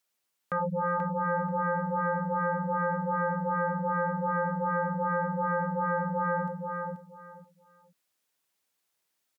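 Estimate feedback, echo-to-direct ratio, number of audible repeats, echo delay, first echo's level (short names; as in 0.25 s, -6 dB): 21%, -5.5 dB, 3, 0.484 s, -5.5 dB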